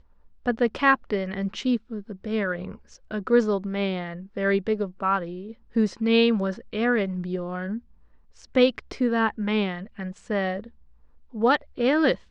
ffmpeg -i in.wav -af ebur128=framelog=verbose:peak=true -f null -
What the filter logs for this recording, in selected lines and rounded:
Integrated loudness:
  I:         -25.3 LUFS
  Threshold: -35.9 LUFS
Loudness range:
  LRA:         2.1 LU
  Threshold: -46.0 LUFS
  LRA low:   -27.0 LUFS
  LRA high:  -24.9 LUFS
True peak:
  Peak:       -5.9 dBFS